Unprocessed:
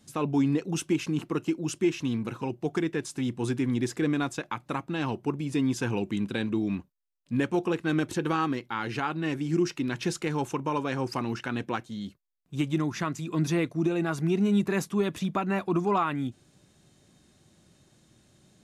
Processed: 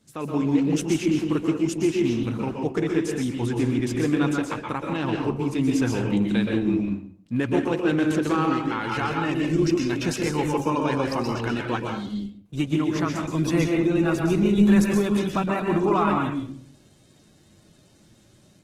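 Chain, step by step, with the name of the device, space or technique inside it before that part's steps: speakerphone in a meeting room (reverb RT60 0.55 s, pre-delay 0.117 s, DRR 1 dB; AGC gain up to 5 dB; gain -2.5 dB; Opus 16 kbps 48000 Hz)

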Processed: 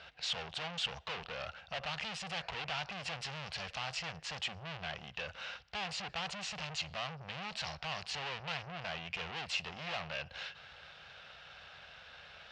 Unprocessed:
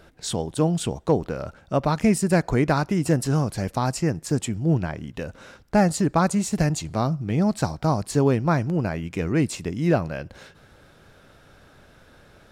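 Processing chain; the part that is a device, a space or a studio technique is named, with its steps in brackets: scooped metal amplifier (tube stage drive 37 dB, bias 0.5; speaker cabinet 100–4600 Hz, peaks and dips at 110 Hz -10 dB, 510 Hz +3 dB, 740 Hz +6 dB, 2800 Hz +7 dB; passive tone stack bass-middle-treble 10-0-10); gain +9 dB

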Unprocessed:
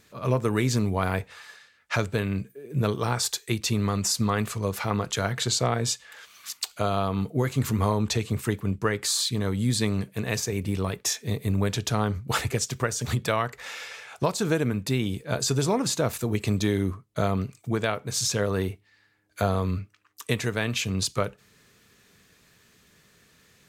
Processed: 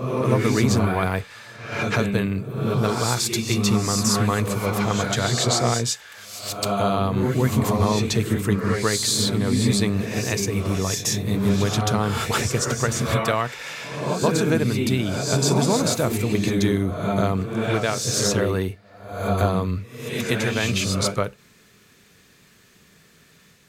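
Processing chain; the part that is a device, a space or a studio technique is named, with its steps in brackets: reverse reverb (reverse; reverb RT60 0.85 s, pre-delay 0.118 s, DRR 1.5 dB; reverse); gain +2.5 dB

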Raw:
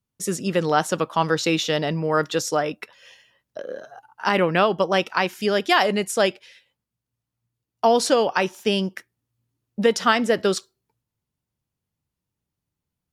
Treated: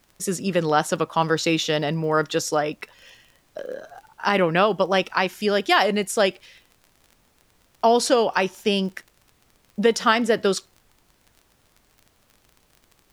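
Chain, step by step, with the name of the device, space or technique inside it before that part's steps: vinyl LP (crackle 33/s -37 dBFS; pink noise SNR 38 dB)

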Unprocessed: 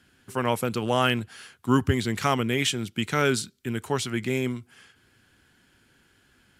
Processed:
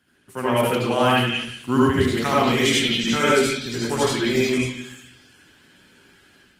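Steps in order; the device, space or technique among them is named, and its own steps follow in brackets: 0.97–2.09 de-esser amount 50%; reverb removal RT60 0.57 s; 2.72–3.21 comb 4.4 ms, depth 32%; delay with a stepping band-pass 0.179 s, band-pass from 3000 Hz, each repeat 0.7 oct, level -0.5 dB; far-field microphone of a smart speaker (reverb RT60 0.70 s, pre-delay 65 ms, DRR -6.5 dB; HPF 120 Hz 6 dB/oct; AGC gain up to 7 dB; gain -4 dB; Opus 24 kbps 48000 Hz)

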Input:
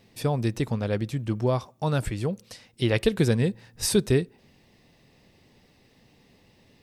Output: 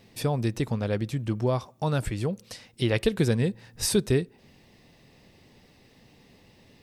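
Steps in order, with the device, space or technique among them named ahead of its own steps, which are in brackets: parallel compression (in parallel at -1 dB: compressor, threshold -33 dBFS, peak gain reduction 16.5 dB); on the sum: gain -3 dB

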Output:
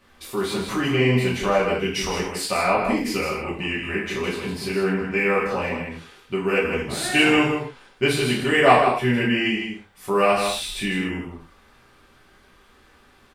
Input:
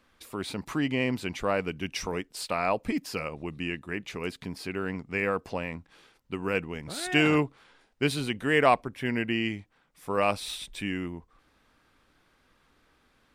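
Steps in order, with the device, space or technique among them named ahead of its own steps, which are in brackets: echo 0.158 s -6.5 dB; non-linear reverb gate 0.16 s falling, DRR -6.5 dB; parallel compression (in parallel at -4 dB: compressor, threshold -33 dBFS, peak gain reduction 22.5 dB); on the sum: gain -1 dB

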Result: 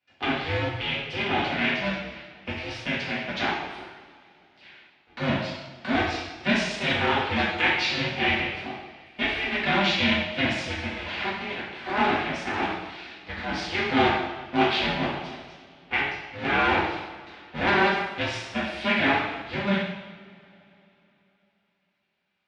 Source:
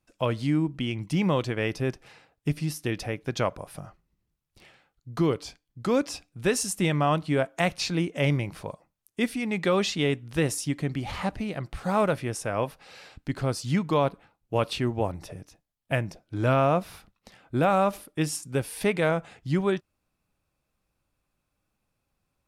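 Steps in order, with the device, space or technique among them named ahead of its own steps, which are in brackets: HPF 220 Hz 24 dB/oct; high shelf 2500 Hz +11 dB; 13.51–14.99 doubler 24 ms -2 dB; ring modulator pedal into a guitar cabinet (polarity switched at an audio rate 200 Hz; speaker cabinet 87–3600 Hz, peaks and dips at 110 Hz -5 dB, 480 Hz -10 dB, 1100 Hz -6 dB, 2200 Hz +3 dB); two-slope reverb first 0.93 s, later 3.4 s, from -20 dB, DRR -7.5 dB; gain -5.5 dB

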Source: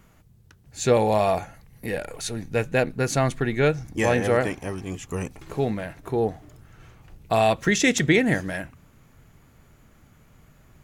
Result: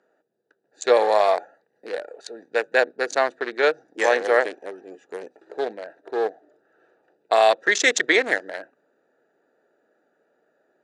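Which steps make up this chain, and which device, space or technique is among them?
Wiener smoothing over 41 samples; phone speaker on a table (speaker cabinet 430–8500 Hz, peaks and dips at 1700 Hz +6 dB, 2600 Hz -5 dB, 4200 Hz +5 dB); gain +4.5 dB

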